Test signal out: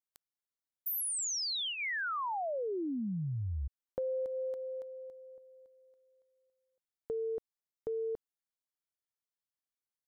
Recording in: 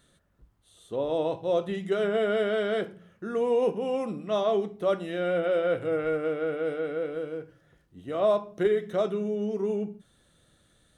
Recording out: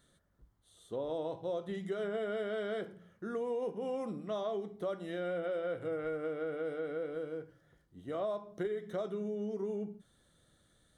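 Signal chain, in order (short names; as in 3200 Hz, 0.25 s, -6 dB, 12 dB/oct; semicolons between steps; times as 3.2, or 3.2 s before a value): bell 2600 Hz -10 dB 0.21 oct; compressor 4:1, threshold -29 dBFS; gain -5 dB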